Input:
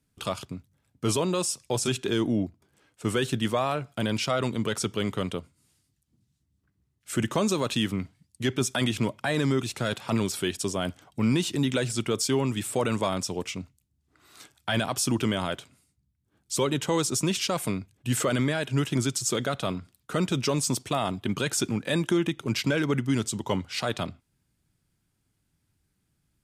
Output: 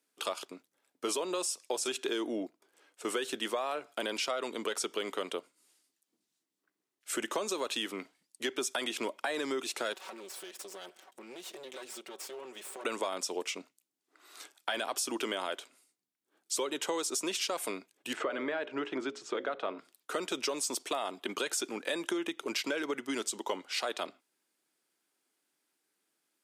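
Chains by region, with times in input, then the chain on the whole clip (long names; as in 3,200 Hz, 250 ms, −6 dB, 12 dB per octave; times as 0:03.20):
0:09.93–0:12.85: lower of the sound and its delayed copy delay 5.3 ms + downward compressor 5 to 1, threshold −41 dBFS
0:18.13–0:19.79: low-pass filter 2,100 Hz + mains-hum notches 60/120/180/240/300/360/420/480/540/600 Hz
whole clip: high-pass filter 340 Hz 24 dB per octave; downward compressor, threshold −30 dBFS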